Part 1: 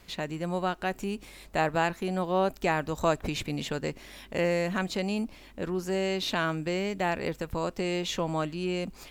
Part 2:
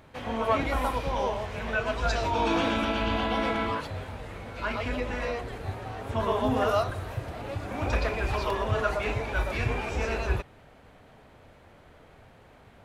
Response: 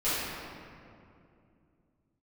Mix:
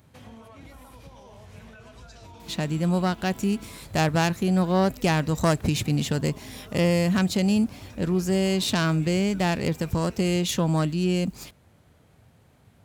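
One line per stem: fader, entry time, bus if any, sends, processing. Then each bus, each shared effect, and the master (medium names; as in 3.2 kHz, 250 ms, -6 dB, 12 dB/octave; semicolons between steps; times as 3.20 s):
+1.5 dB, 2.40 s, no send, self-modulated delay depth 0.1 ms
-9.5 dB, 0.00 s, no send, treble shelf 6.2 kHz +7.5 dB; peak limiter -22.5 dBFS, peak gain reduction 9.5 dB; compression 4:1, threshold -39 dBFS, peak gain reduction 10.5 dB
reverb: none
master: high-pass 91 Hz 12 dB/octave; tone controls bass +13 dB, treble +8 dB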